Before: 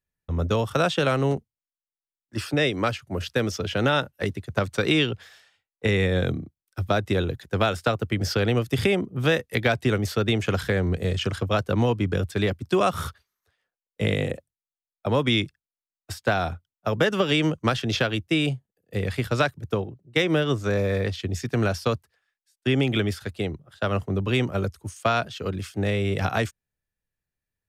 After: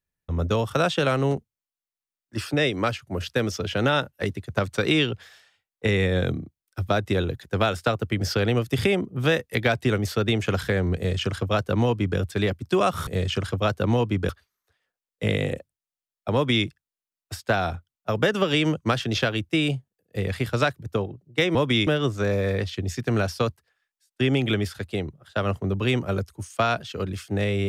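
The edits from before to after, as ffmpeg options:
ffmpeg -i in.wav -filter_complex "[0:a]asplit=5[link_01][link_02][link_03][link_04][link_05];[link_01]atrim=end=13.072[link_06];[link_02]atrim=start=10.958:end=12.182[link_07];[link_03]atrim=start=13.068:end=20.332[link_08];[link_04]atrim=start=15.118:end=15.442[link_09];[link_05]atrim=start=20.328[link_10];[link_06][link_07]acrossfade=duration=0.004:curve1=hsin:curve2=hsin[link_11];[link_11][link_08]acrossfade=duration=0.004:curve1=hsin:curve2=hsin[link_12];[link_12][link_09]acrossfade=duration=0.004:curve1=hsin:curve2=hsin[link_13];[link_13][link_10]acrossfade=duration=0.004:curve1=hsin:curve2=hsin" out.wav

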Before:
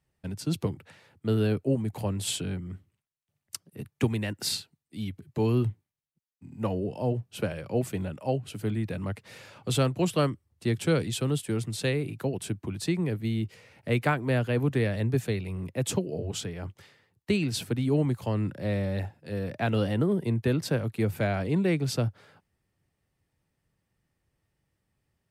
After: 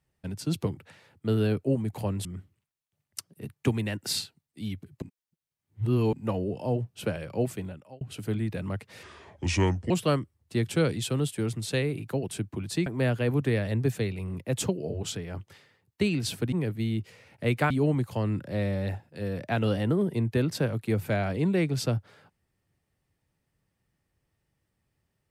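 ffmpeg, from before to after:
ffmpeg -i in.wav -filter_complex "[0:a]asplit=10[link_01][link_02][link_03][link_04][link_05][link_06][link_07][link_08][link_09][link_10];[link_01]atrim=end=2.252[link_11];[link_02]atrim=start=2.608:end=5.382[link_12];[link_03]atrim=start=5.378:end=6.492,asetpts=PTS-STARTPTS,areverse[link_13];[link_04]atrim=start=6.488:end=8.37,asetpts=PTS-STARTPTS,afade=type=out:start_time=1.282:duration=0.6[link_14];[link_05]atrim=start=8.37:end=9.394,asetpts=PTS-STARTPTS,afade=type=in:duration=0.004:curve=hsin[link_15];[link_06]atrim=start=9.39:end=10.01,asetpts=PTS-STARTPTS,asetrate=31311,aresample=44100[link_16];[link_07]atrim=start=10.006:end=12.972[link_17];[link_08]atrim=start=14.148:end=17.812[link_18];[link_09]atrim=start=12.968:end=14.152[link_19];[link_10]atrim=start=17.808[link_20];[link_11][link_12]acrossfade=duration=0.004:curve1=hsin:curve2=hsin[link_21];[link_21][link_13]acrossfade=duration=0.004:curve1=hsin:curve2=hsin[link_22];[link_14][link_15]concat=n=2:v=0:a=1[link_23];[link_22][link_23]acrossfade=duration=0.004:curve1=hsin:curve2=hsin[link_24];[link_24][link_16]acrossfade=duration=0.004:curve1=hsin:curve2=hsin[link_25];[link_25][link_17]acrossfade=duration=0.004:curve1=hsin:curve2=hsin[link_26];[link_26][link_18]acrossfade=duration=0.004:curve1=hsin:curve2=hsin[link_27];[link_27][link_19]acrossfade=duration=0.004:curve1=hsin:curve2=hsin[link_28];[link_28][link_20]acrossfade=duration=0.004:curve1=hsin:curve2=hsin" out.wav

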